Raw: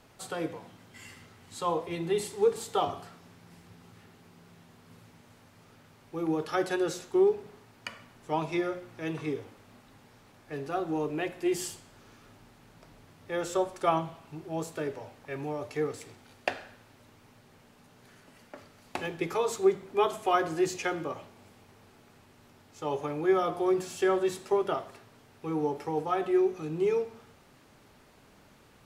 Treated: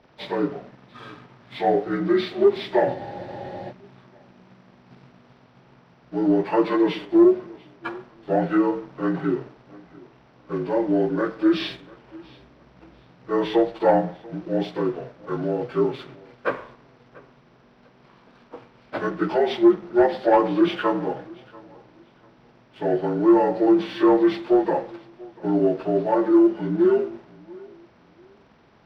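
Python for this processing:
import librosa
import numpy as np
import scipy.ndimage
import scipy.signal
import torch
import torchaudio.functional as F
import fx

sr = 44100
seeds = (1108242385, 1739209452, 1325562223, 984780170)

p1 = fx.partial_stretch(x, sr, pct=77)
p2 = fx.leveller(p1, sr, passes=1)
p3 = fx.high_shelf(p2, sr, hz=4300.0, db=-11.0)
p4 = p3 + fx.echo_feedback(p3, sr, ms=690, feedback_pct=26, wet_db=-23.0, dry=0)
p5 = fx.spec_freeze(p4, sr, seeds[0], at_s=2.98, hold_s=0.73)
y = p5 * librosa.db_to_amplitude(7.0)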